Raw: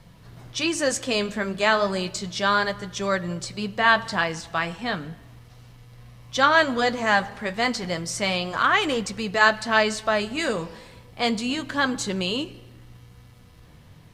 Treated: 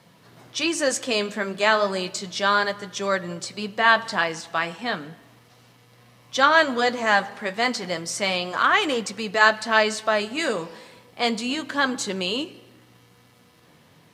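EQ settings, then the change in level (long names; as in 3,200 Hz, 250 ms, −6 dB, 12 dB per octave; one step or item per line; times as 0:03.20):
high-pass filter 220 Hz 12 dB per octave
+1.0 dB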